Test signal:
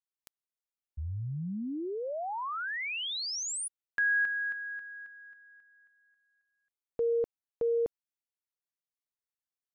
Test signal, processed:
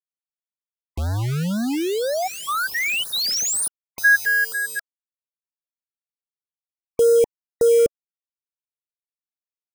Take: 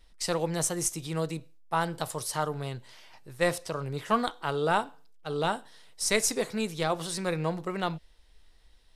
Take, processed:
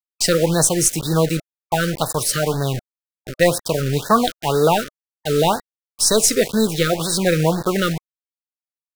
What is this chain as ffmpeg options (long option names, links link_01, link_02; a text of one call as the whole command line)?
ffmpeg -i in.wav -filter_complex "[0:a]afftfilt=real='re*gte(hypot(re,im),0.00501)':imag='im*gte(hypot(re,im),0.00501)':win_size=1024:overlap=0.75,asplit=2[link_01][link_02];[link_02]alimiter=limit=-19.5dB:level=0:latency=1:release=256,volume=-1.5dB[link_03];[link_01][link_03]amix=inputs=2:normalize=0,asoftclip=type=hard:threshold=-14dB,acrusher=bits=5:mix=0:aa=0.000001,afftfilt=real='re*(1-between(b*sr/1024,830*pow(2700/830,0.5+0.5*sin(2*PI*2*pts/sr))/1.41,830*pow(2700/830,0.5+0.5*sin(2*PI*2*pts/sr))*1.41))':imag='im*(1-between(b*sr/1024,830*pow(2700/830,0.5+0.5*sin(2*PI*2*pts/sr))/1.41,830*pow(2700/830,0.5+0.5*sin(2*PI*2*pts/sr))*1.41))':win_size=1024:overlap=0.75,volume=8.5dB" out.wav